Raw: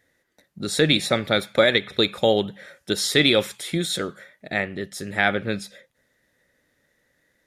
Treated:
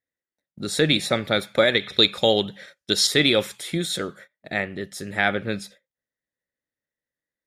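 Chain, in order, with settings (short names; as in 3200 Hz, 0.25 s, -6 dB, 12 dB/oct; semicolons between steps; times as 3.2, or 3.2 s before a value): gate -42 dBFS, range -24 dB; 1.79–3.07 bell 4600 Hz +8 dB 1.6 oct; gain -1 dB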